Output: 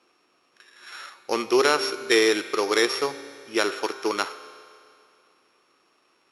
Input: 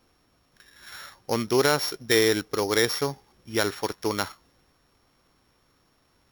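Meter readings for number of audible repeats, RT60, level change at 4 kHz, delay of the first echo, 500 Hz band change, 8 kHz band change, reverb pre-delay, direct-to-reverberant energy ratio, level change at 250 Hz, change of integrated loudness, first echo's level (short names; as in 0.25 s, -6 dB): none, 2.3 s, +1.0 dB, none, +2.0 dB, -1.0 dB, 8 ms, 11.5 dB, +0.5 dB, +1.5 dB, none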